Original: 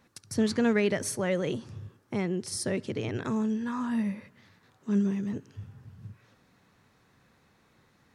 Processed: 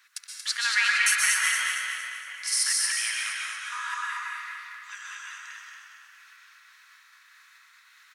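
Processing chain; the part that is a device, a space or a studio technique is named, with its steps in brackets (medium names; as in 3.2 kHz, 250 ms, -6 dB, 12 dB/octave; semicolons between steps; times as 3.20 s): steep high-pass 1.3 kHz 36 dB/octave; 3.17–3.72 s: amplifier tone stack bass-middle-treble 10-0-10; bucket-brigade echo 93 ms, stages 2048, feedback 84%, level -14 dB; trance gate with a delay (trance gate "xxxx..xx" 198 bpm -60 dB; feedback delay 231 ms, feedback 46%, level -5 dB); plate-style reverb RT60 1.8 s, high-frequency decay 0.55×, pre-delay 110 ms, DRR -3 dB; trim +9 dB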